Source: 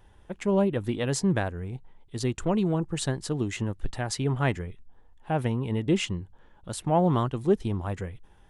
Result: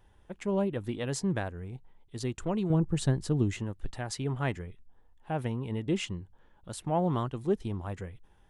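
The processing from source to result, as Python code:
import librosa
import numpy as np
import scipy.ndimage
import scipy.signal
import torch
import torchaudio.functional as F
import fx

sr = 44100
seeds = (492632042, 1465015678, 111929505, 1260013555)

y = fx.low_shelf(x, sr, hz=330.0, db=10.5, at=(2.7, 3.59))
y = y * 10.0 ** (-5.5 / 20.0)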